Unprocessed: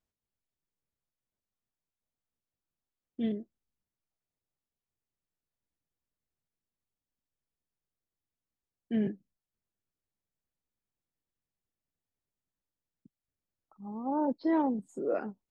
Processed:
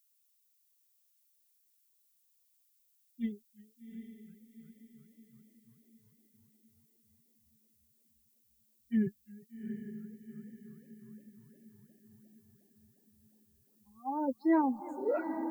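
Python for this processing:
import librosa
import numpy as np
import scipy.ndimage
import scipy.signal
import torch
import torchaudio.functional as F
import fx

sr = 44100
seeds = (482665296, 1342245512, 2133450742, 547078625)

y = fx.bin_expand(x, sr, power=3.0)
y = fx.high_shelf_res(y, sr, hz=2500.0, db=-8.5, q=1.5)
y = fx.dmg_noise_colour(y, sr, seeds[0], colour='violet', level_db=-76.0)
y = fx.echo_diffused(y, sr, ms=784, feedback_pct=46, wet_db=-8.5)
y = fx.echo_warbled(y, sr, ms=352, feedback_pct=78, rate_hz=2.8, cents=158, wet_db=-23)
y = y * 10.0 ** (3.0 / 20.0)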